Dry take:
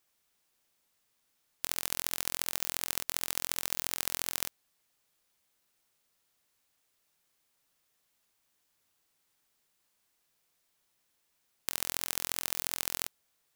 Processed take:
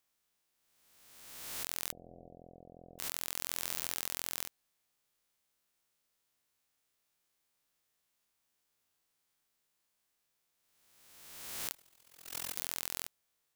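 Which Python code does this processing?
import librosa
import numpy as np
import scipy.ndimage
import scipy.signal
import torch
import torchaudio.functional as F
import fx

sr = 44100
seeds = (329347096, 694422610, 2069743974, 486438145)

y = fx.spec_swells(x, sr, rise_s=1.52)
y = fx.cheby_ripple(y, sr, hz=740.0, ripple_db=3, at=(1.92, 2.99))
y = fx.resample_bad(y, sr, factor=4, down='none', up='zero_stuff', at=(11.73, 12.56))
y = y * librosa.db_to_amplitude(-8.0)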